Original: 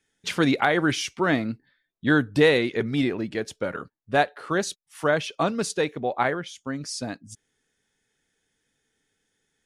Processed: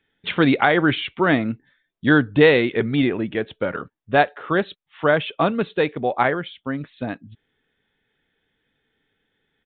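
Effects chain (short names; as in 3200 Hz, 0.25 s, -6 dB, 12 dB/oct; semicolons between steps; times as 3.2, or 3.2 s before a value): downsampling 8000 Hz; gain +4.5 dB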